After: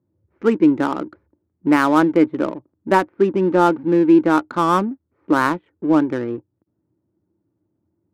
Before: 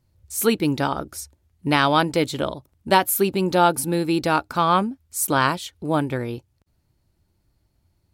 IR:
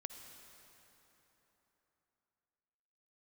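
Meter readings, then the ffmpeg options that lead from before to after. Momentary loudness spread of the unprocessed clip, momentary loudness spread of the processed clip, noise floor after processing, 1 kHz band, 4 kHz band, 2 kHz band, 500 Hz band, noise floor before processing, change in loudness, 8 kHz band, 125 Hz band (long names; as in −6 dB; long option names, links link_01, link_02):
13 LU, 13 LU, −74 dBFS, +1.0 dB, −9.0 dB, +0.5 dB, +4.0 dB, −69 dBFS, +4.0 dB, below −10 dB, −2.0 dB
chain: -af "highpass=frequency=120:width=0.5412,highpass=frequency=120:width=1.3066,equalizer=frequency=140:width_type=q:width=4:gain=-8,equalizer=frequency=320:width_type=q:width=4:gain=10,equalizer=frequency=730:width_type=q:width=4:gain=-5,lowpass=frequency=2100:width=0.5412,lowpass=frequency=2100:width=1.3066,adynamicsmooth=sensitivity=4:basefreq=870,volume=2dB"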